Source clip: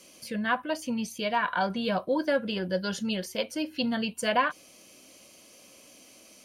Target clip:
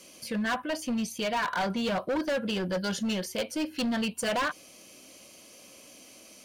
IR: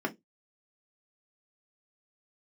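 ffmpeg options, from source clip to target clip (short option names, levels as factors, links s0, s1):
-af "asoftclip=type=hard:threshold=0.0422,volume=1.26"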